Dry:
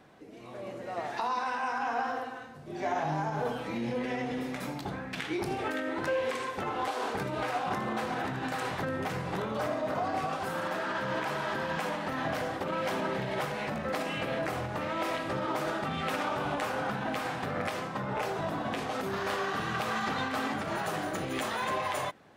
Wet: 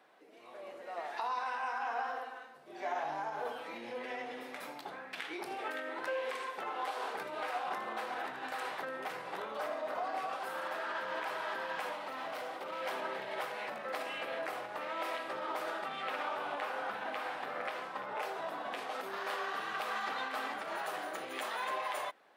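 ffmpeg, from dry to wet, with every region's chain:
-filter_complex "[0:a]asettb=1/sr,asplit=3[a][b][c];[a]atrim=end=11.924[d];[b]atrim=start=11.92:end=12.81,asetpts=PTS-STARTPTS,afade=t=in:d=0.004:c=qsin,afade=t=out:st=0.886:d=0.004:c=qsin,bandreject=f=1.7k:w=6.7,volume=31dB,asoftclip=hard,volume=-31dB[e];[c]atrim=start=12.806[f];[d][e]acrossfade=d=0.004:c1=hsin:c2=qsin[g];[g][f]acrossfade=d=0.004:c1=qsin:c2=hsin,asettb=1/sr,asplit=3[h][i][j];[h]atrim=end=16.024[k];[i]atrim=start=16.02:end=18.06,asetpts=PTS-STARTPTS,afade=t=in:d=0.004:c=qsin,afade=t=out:st=2.036:d=0.004:c=qsin,acrossover=split=4400[l][m];[m]acompressor=threshold=-55dB:ratio=4:attack=1:release=60[n];[l][n]amix=inputs=2:normalize=0,aecho=1:1:876:0.224,atrim=end_sample=89964[o];[j]atrim=start=18.056[p];[k][o]acrossfade=d=0.004:c1=hsin:c2=qsin[q];[q][p]acrossfade=d=0.004:c1=qsin:c2=hsin,highpass=510,equalizer=f=6.6k:t=o:w=0.79:g=-5.5,volume=-4dB"

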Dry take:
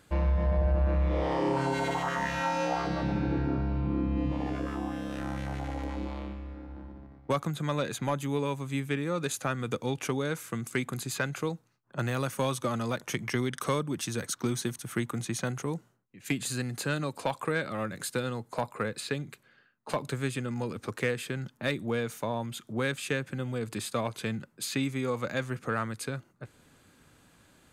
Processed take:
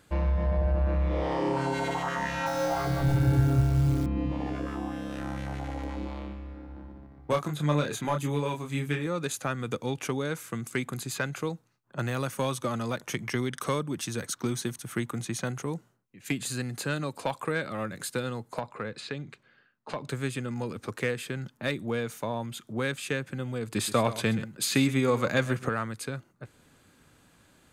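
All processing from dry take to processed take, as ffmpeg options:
-filter_complex "[0:a]asettb=1/sr,asplit=3[a][b][c];[a]atrim=end=2.464[d];[b]atrim=start=2.46:end=4.06,asetpts=PTS-STARTPTS,afade=t=in:d=0.004:c=qsin,afade=t=out:st=1.596:d=0.004:c=qsin,lowshelf=f=140:t=q:w=3:g=10.5,aecho=1:1:7.2:0.74,atrim=end_sample=70560,acrusher=bits=8:dc=4:mix=0:aa=0.000001[e];[c]atrim=start=4.056[f];[d][e]acrossfade=d=0.004:c1=hsin:c2=qsin[g];[g][f]acrossfade=d=0.004:c1=qsin:c2=hsin,asettb=1/sr,asplit=3[h][i][j];[h]atrim=end=7.174[k];[i]atrim=start=7.17:end=9.07,asetpts=PTS-STARTPTS,afade=t=in:d=0.004:c=qsin,afade=t=out:st=1.896:d=0.004:c=qsin,aphaser=in_gain=1:out_gain=1:delay=3.1:decay=0.31:speed=1.8:type=sinusoidal,asplit=2[l][m];[m]adelay=27,volume=-5dB[n];[l][n]amix=inputs=2:normalize=0,atrim=end_sample=83790[o];[j]atrim=start=9.066[p];[k][o]acrossfade=d=0.004:c1=hsin:c2=qsin[q];[q][p]acrossfade=d=0.004:c1=qsin:c2=hsin,asettb=1/sr,asplit=3[r][s][t];[r]atrim=end=18.594[u];[s]atrim=start=18.59:end=20.09,asetpts=PTS-STARTPTS,afade=t=in:d=0.004:c=qsin,afade=t=out:st=1.496:d=0.004:c=qsin,lowpass=5.2k,acompressor=threshold=-35dB:ratio=1.5:attack=3.2:release=140:knee=1:detection=peak[v];[t]atrim=start=20.086[w];[u][v]acrossfade=d=0.004:c1=hsin:c2=qsin[x];[x][w]acrossfade=d=0.004:c1=qsin:c2=hsin,asettb=1/sr,asplit=3[y][z][aa];[y]atrim=end=23.754[ab];[z]atrim=start=23.75:end=25.69,asetpts=PTS-STARTPTS,afade=t=in:d=0.004:c=qsin,afade=t=out:st=1.936:d=0.004:c=qsin,acontrast=54,aecho=1:1:128:0.188,atrim=end_sample=85554[ac];[aa]atrim=start=25.686[ad];[ab][ac]acrossfade=d=0.004:c1=hsin:c2=qsin[ae];[ae][ad]acrossfade=d=0.004:c1=qsin:c2=hsin"

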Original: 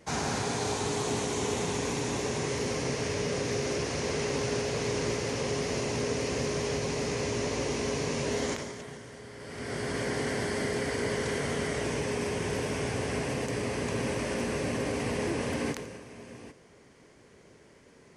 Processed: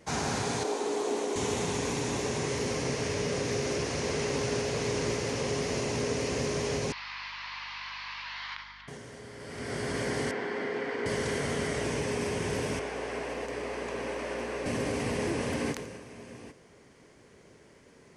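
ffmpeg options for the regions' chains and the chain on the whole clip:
-filter_complex "[0:a]asettb=1/sr,asplit=3[a][b][c];[a]atrim=end=0.634[d];[b]atrim=start=0.63:end=1.36,asetpts=PTS-STARTPTS,afade=t=in:d=0.004:c=qsin,afade=t=out:st=0.726:d=0.004:c=qsin,highpass=f=310:w=0.5412,highpass=f=310:w=1.3066,tiltshelf=f=750:g=6[e];[c]atrim=start=1.356[f];[d][e]acrossfade=d=0.004:c1=hsin:c2=qsin[g];[g][f]acrossfade=d=0.004:c1=qsin:c2=hsin,asettb=1/sr,asplit=3[h][i][j];[h]atrim=end=6.924[k];[i]atrim=start=6.92:end=8.88,asetpts=PTS-STARTPTS,afade=t=in:d=0.004:c=qsin,afade=t=out:st=1.956:d=0.004:c=qsin,asuperpass=centerf=2100:order=12:qfactor=0.57,aeval=exprs='val(0)+0.00112*(sin(2*PI*50*n/s)+sin(2*PI*2*50*n/s)/2+sin(2*PI*3*50*n/s)/3+sin(2*PI*4*50*n/s)/4+sin(2*PI*5*50*n/s)/5)':c=same[l];[j]atrim=start=8.876[m];[k][l]acrossfade=d=0.004:c1=hsin:c2=qsin[n];[n][m]acrossfade=d=0.004:c1=qsin:c2=hsin,asettb=1/sr,asplit=3[o][p][q];[o]atrim=end=10.314[r];[p]atrim=start=10.31:end=11.06,asetpts=PTS-STARTPTS,afade=t=in:d=0.004:c=qsin,afade=t=out:st=0.746:d=0.004:c=qsin,highpass=290,lowpass=2.6k,bandreject=f=610:w=7.5[s];[q]atrim=start=11.056[t];[r][s]acrossfade=d=0.004:c1=hsin:c2=qsin[u];[u][t]acrossfade=d=0.004:c1=qsin:c2=hsin,asettb=1/sr,asplit=3[v][w][x];[v]atrim=end=12.794[y];[w]atrim=start=12.79:end=14.66,asetpts=PTS-STARTPTS,afade=t=in:d=0.004:c=qsin,afade=t=out:st=1.866:d=0.004:c=qsin,highpass=380,highshelf=f=4.1k:g=-11.5,aeval=exprs='val(0)+0.00355*(sin(2*PI*60*n/s)+sin(2*PI*2*60*n/s)/2+sin(2*PI*3*60*n/s)/3+sin(2*PI*4*60*n/s)/4+sin(2*PI*5*60*n/s)/5)':c=same[z];[x]atrim=start=14.656[aa];[y][z]acrossfade=d=0.004:c1=hsin:c2=qsin[ab];[ab][aa]acrossfade=d=0.004:c1=qsin:c2=hsin"

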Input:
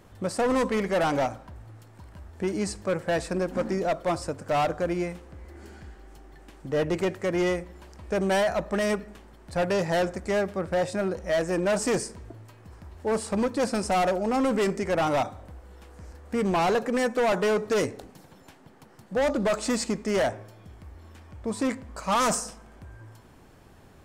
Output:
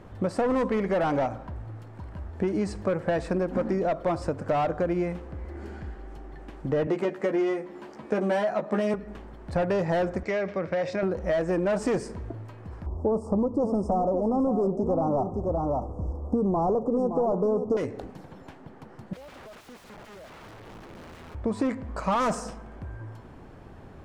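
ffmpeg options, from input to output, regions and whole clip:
-filter_complex "[0:a]asettb=1/sr,asplit=3[a][b][c];[a]atrim=end=6.874[d];[b]atrim=start=6.87:end=8.94,asetpts=PTS-STARTPTS,afade=t=in:d=0.004:c=qsin,afade=t=out:st=2.066:d=0.004:c=qsin,highpass=f=170:w=0.5412,highpass=f=170:w=1.3066,asplit=2[e][f];[f]adelay=14,volume=-3.5dB[g];[e][g]amix=inputs=2:normalize=0,atrim=end_sample=91287[h];[c]atrim=start=8.936[i];[d][h]acrossfade=d=0.004:c1=hsin:c2=qsin[j];[j][i]acrossfade=d=0.004:c1=qsin:c2=hsin,asettb=1/sr,asplit=3[k][l][m];[k]atrim=end=10.234[n];[l]atrim=start=10.23:end=11.03,asetpts=PTS-STARTPTS,afade=t=in:d=0.004:c=qsin,afade=t=out:st=0.796:d=0.004:c=qsin,highpass=180,equalizer=f=230:t=q:w=4:g=-9,equalizer=f=370:t=q:w=4:g=-5,equalizer=f=830:t=q:w=4:g=-7,equalizer=f=1.3k:t=q:w=4:g=-3,equalizer=f=2.2k:t=q:w=4:g=8,equalizer=f=5.6k:t=q:w=4:g=4,lowpass=f=6.5k:w=0.5412,lowpass=f=6.5k:w=1.3066,acompressor=threshold=-29dB:ratio=2.5:attack=3.2:release=140:knee=1:detection=peak[o];[m]atrim=start=11.026[p];[n][o]acrossfade=d=0.004:c1=hsin:c2=qsin[q];[q][p]acrossfade=d=0.004:c1=qsin:c2=hsin,asettb=1/sr,asplit=3[r][s][t];[r]atrim=end=12.864[u];[s]atrim=start=12.86:end=17.77,asetpts=PTS-STARTPTS,afade=t=in:d=0.004:c=qsin,afade=t=out:st=4.906:d=0.004:c=qsin,asuperstop=centerf=2500:order=12:qfactor=0.63,tiltshelf=f=1.3k:g=5.5,aecho=1:1:567:0.316,atrim=end_sample=216531[v];[t]atrim=start=17.766[w];[u][v]acrossfade=d=0.004:c1=hsin:c2=qsin[x];[x][w]acrossfade=d=0.004:c1=qsin:c2=hsin,asettb=1/sr,asplit=3[y][z][aa];[y]atrim=end=19.134[ab];[z]atrim=start=19.13:end=21.35,asetpts=PTS-STARTPTS,afade=t=in:d=0.004:c=qsin,afade=t=out:st=2.216:d=0.004:c=qsin,highshelf=f=5.8k:g=-6,acompressor=threshold=-39dB:ratio=8:attack=3.2:release=140:knee=1:detection=peak,aeval=exprs='(mod(188*val(0)+1,2)-1)/188':c=same[ac];[aa]atrim=start=21.346[ad];[ab][ac]acrossfade=d=0.004:c1=hsin:c2=qsin[ae];[ae][ad]acrossfade=d=0.004:c1=qsin:c2=hsin,lowpass=f=1.4k:p=1,acompressor=threshold=-30dB:ratio=6,volume=7dB"

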